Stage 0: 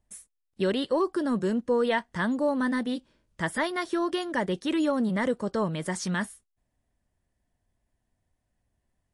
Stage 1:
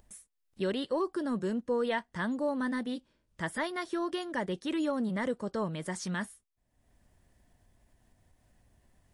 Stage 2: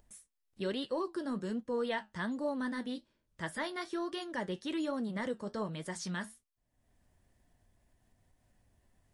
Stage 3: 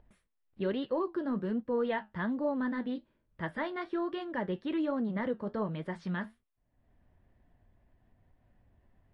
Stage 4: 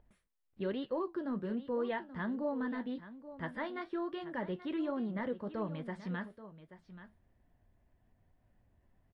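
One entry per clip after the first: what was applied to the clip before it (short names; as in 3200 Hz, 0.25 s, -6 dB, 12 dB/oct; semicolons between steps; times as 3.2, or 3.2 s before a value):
upward compressor, threshold -44 dBFS; gain -5.5 dB
dynamic EQ 4500 Hz, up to +4 dB, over -56 dBFS, Q 1; flange 1.2 Hz, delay 6.6 ms, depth 5.5 ms, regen -66%
air absorption 440 m; gain +4.5 dB
echo 0.831 s -14 dB; gain -4 dB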